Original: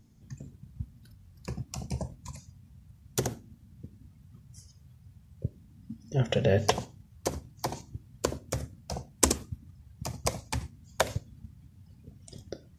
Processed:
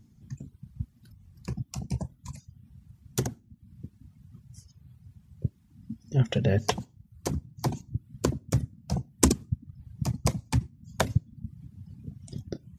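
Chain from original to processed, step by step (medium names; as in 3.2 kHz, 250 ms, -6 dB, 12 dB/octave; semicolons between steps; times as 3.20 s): peaking EQ 160 Hz +5.5 dB 2.6 oct, from 7.30 s +13 dB; reverb removal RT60 0.57 s; peaking EQ 540 Hz -5.5 dB 0.73 oct; trim -1 dB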